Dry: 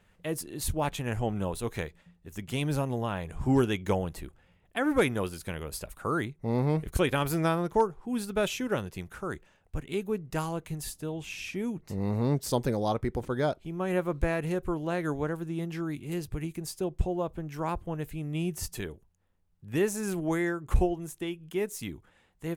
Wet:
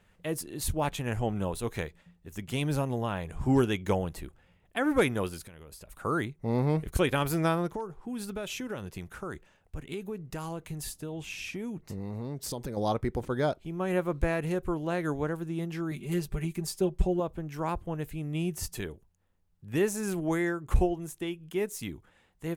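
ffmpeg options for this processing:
-filter_complex "[0:a]asplit=3[a][b][c];[a]afade=t=out:st=5.42:d=0.02[d];[b]acompressor=threshold=-44dB:ratio=10:attack=3.2:release=140:knee=1:detection=peak,afade=t=in:st=5.42:d=0.02,afade=t=out:st=5.91:d=0.02[e];[c]afade=t=in:st=5.91:d=0.02[f];[d][e][f]amix=inputs=3:normalize=0,asettb=1/sr,asplit=3[g][h][i];[g]atrim=end=7.724[j];[h]atrim=start=7.72:end=12.77,asetpts=PTS-STARTPTS,afade=t=in:d=0.004:c=qsin,afade=t=out:st=5.046:d=0.004:c=qsin,acompressor=threshold=-32dB:ratio=5:attack=3.2:release=140:knee=1:detection=peak[k];[i]atrim=start=12.766[l];[j][k]acrossfade=d=0.004:c1=hsin:c2=qsin[m];[m][l]acrossfade=d=0.004:c1=qsin:c2=hsin,asettb=1/sr,asplit=3[n][o][p];[n]atrim=end=15.914[q];[o]atrim=start=15.91:end=17.2,asetpts=PTS-STARTPTS,afade=t=in:d=0.004:c=qsin,afade=t=out:st=1.286:d=0.004:c=qsin,aecho=1:1:5.1:0.83,atrim=end_sample=56889[r];[p]atrim=start=17.196[s];[q][r]acrossfade=d=0.004:c1=hsin:c2=qsin[t];[t][s]acrossfade=d=0.004:c1=qsin:c2=hsin"

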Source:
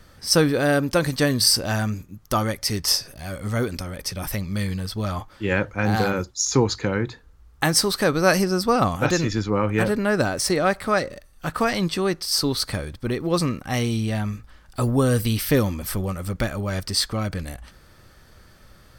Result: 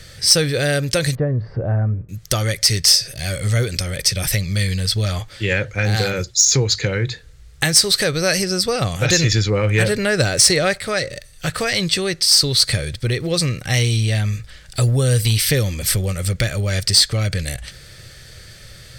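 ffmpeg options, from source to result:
-filter_complex "[0:a]asettb=1/sr,asplit=3[a][b][c];[a]atrim=end=1.154[d];[b]atrim=start=1.15:end=2.09,asetpts=PTS-STARTPTS,afade=t=in:d=0.004:c=qsin,afade=t=out:st=0.936:d=0.004:c=qsin,lowpass=f=1.1k:w=0.5412,lowpass=f=1.1k:w=1.3066[e];[c]atrim=start=2.086[f];[d][e]acrossfade=d=0.004:c1=hsin:c2=qsin[g];[g][f]acrossfade=d=0.004:c1=qsin:c2=hsin,asplit=3[h][i][j];[h]atrim=end=9.092[k];[i]atrim=start=9.088:end=10.782,asetpts=PTS-STARTPTS,volume=5.5dB[l];[j]atrim=start=10.778[m];[k][l]acrossfade=d=0.004:c1=hsin:c2=hsin[n];[n][m]acrossfade=d=0.004:c1=hsin:c2=hsin,acompressor=threshold=-28dB:ratio=2,equalizer=f=125:t=o:w=1:g=10,equalizer=f=250:t=o:w=1:g=-9,equalizer=f=500:t=o:w=1:g=6,equalizer=f=1k:t=o:w=1:g=-11,equalizer=f=2k:t=o:w=1:g=8,equalizer=f=4k:t=o:w=1:g=8,equalizer=f=8k:t=o:w=1:g=10,acontrast=69,volume=-1dB"

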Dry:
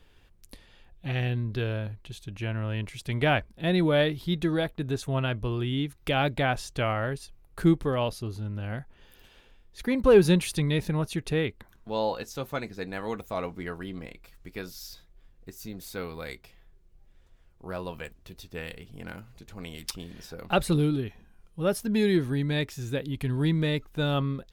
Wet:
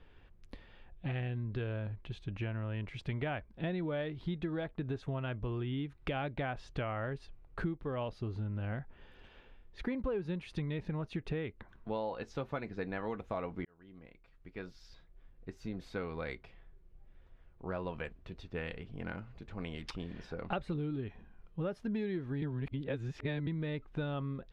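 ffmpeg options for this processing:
-filter_complex "[0:a]asplit=4[a][b][c][d];[a]atrim=end=13.65,asetpts=PTS-STARTPTS,afade=t=out:st=13.646:d=0.004:c=hsin[e];[b]atrim=start=13.65:end=22.422,asetpts=PTS-STARTPTS,afade=t=in:d=2[f];[c]atrim=start=22.418:end=23.472,asetpts=PTS-STARTPTS,areverse[g];[d]atrim=start=23.468[h];[e][f]concat=n=2:v=0:a=1[i];[i][g]acrossfade=d=0.004:c1=hsin:c2=hsin[j];[j][h]acrossfade=d=0.004:c1=hsin:c2=hsin,lowpass=2.5k,acompressor=threshold=-33dB:ratio=10"

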